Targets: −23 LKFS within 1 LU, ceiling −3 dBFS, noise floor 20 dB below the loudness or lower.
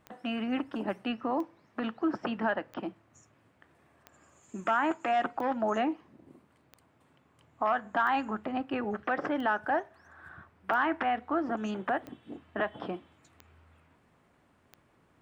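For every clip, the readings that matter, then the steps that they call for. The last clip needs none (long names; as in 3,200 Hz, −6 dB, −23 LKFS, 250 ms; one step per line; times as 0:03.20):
number of clicks 12; integrated loudness −32.0 LKFS; sample peak −15.5 dBFS; target loudness −23.0 LKFS
→ click removal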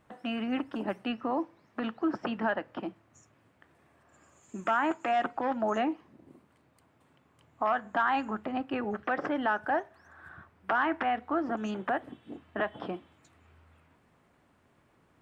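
number of clicks 0; integrated loudness −32.0 LKFS; sample peak −15.5 dBFS; target loudness −23.0 LKFS
→ level +9 dB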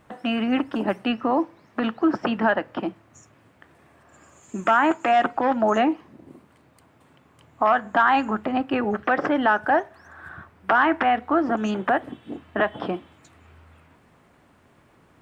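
integrated loudness −23.0 LKFS; sample peak −6.5 dBFS; background noise floor −58 dBFS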